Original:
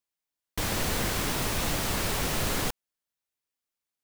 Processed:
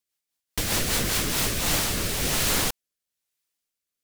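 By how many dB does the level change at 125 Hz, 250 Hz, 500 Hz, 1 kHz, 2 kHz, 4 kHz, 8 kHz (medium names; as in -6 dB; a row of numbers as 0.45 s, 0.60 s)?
+1.5 dB, +2.0 dB, +1.5 dB, +0.5 dB, +3.5 dB, +6.0 dB, +7.0 dB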